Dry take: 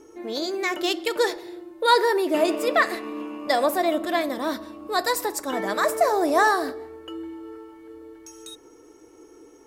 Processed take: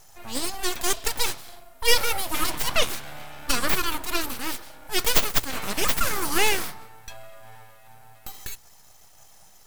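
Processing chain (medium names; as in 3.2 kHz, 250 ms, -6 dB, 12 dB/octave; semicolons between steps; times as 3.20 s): RIAA curve recording; full-wave rectifier; hum notches 60/120 Hz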